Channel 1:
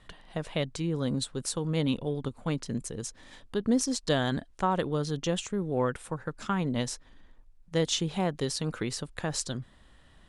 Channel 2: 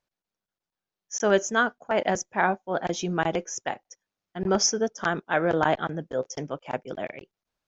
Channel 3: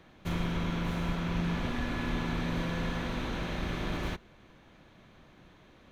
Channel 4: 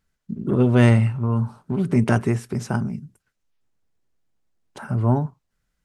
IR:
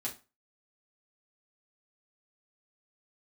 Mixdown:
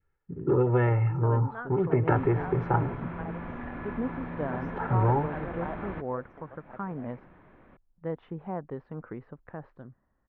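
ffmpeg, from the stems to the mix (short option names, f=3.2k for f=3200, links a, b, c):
-filter_complex "[0:a]lowpass=1.3k,aemphasis=mode=production:type=75kf,dynaudnorm=f=110:g=17:m=9.5dB,adelay=300,volume=-16dB[a];[1:a]volume=-18dB[b];[2:a]acompressor=threshold=-35dB:ratio=6,adelay=1850,volume=2dB[c];[3:a]aecho=1:1:2.3:0.91,volume=-1.5dB[d];[b][d]amix=inputs=2:normalize=0,acompressor=threshold=-19dB:ratio=10,volume=0dB[e];[a][c][e]amix=inputs=3:normalize=0,adynamicequalizer=threshold=0.00708:dfrequency=900:dqfactor=1.4:tfrequency=900:tqfactor=1.4:attack=5:release=100:ratio=0.375:range=2:mode=boostabove:tftype=bell,lowpass=f=2k:w=0.5412,lowpass=f=2k:w=1.3066,lowshelf=f=60:g=-6.5"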